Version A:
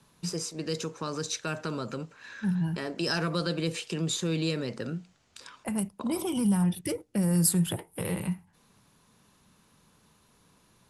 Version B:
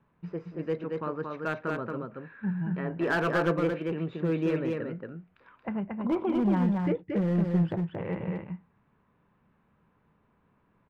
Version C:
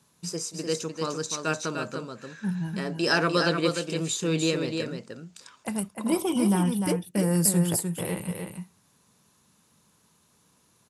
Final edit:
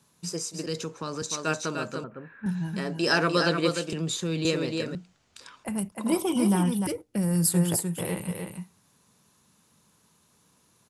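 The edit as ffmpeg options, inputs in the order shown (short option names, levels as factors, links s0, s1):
-filter_complex "[0:a]asplit=4[s0][s1][s2][s3];[2:a]asplit=6[s4][s5][s6][s7][s8][s9];[s4]atrim=end=0.662[s10];[s0]atrim=start=0.658:end=1.222[s11];[s5]atrim=start=1.218:end=2.042[s12];[1:a]atrim=start=2.038:end=2.462[s13];[s6]atrim=start=2.458:end=3.932[s14];[s1]atrim=start=3.928:end=4.452[s15];[s7]atrim=start=4.448:end=4.952[s16];[s2]atrim=start=4.948:end=5.922[s17];[s8]atrim=start=5.918:end=6.872[s18];[s3]atrim=start=6.868:end=7.542[s19];[s9]atrim=start=7.538[s20];[s10][s11]acrossfade=d=0.004:c1=hsin:c2=hsin[s21];[s21][s12]acrossfade=d=0.004:c1=hsin:c2=hsin[s22];[s22][s13]acrossfade=d=0.004:c1=hsin:c2=hsin[s23];[s23][s14]acrossfade=d=0.004:c1=hsin:c2=hsin[s24];[s24][s15]acrossfade=d=0.004:c1=hsin:c2=hsin[s25];[s25][s16]acrossfade=d=0.004:c1=hsin:c2=hsin[s26];[s26][s17]acrossfade=d=0.004:c1=hsin:c2=hsin[s27];[s27][s18]acrossfade=d=0.004:c1=hsin:c2=hsin[s28];[s28][s19]acrossfade=d=0.004:c1=hsin:c2=hsin[s29];[s29][s20]acrossfade=d=0.004:c1=hsin:c2=hsin"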